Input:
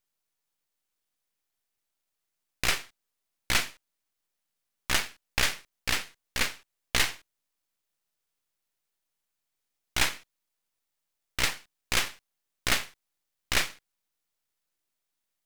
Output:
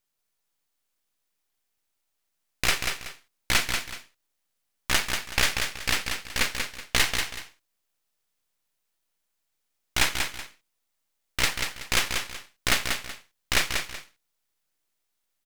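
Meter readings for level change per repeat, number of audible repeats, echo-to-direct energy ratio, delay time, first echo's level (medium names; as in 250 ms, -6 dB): -11.0 dB, 2, -5.0 dB, 188 ms, -5.5 dB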